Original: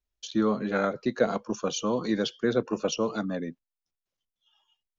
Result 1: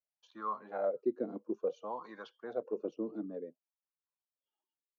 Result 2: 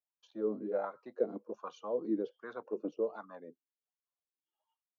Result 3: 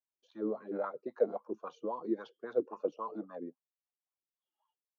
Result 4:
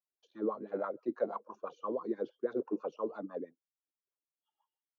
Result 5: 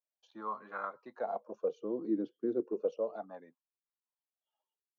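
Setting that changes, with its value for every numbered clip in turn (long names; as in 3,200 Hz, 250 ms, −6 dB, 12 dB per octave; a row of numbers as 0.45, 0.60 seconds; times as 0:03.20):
LFO wah, speed: 0.57, 1.3, 3.7, 6.1, 0.33 Hertz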